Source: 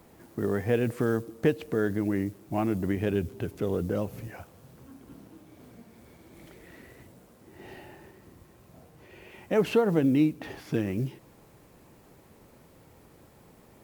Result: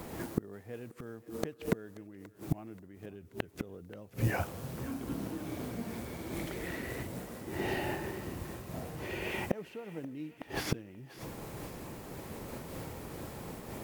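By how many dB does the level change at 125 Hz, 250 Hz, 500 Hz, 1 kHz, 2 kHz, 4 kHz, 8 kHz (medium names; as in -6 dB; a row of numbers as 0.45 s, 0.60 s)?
-5.5 dB, -9.5 dB, -10.5 dB, -3.0 dB, -1.5 dB, 0.0 dB, +4.5 dB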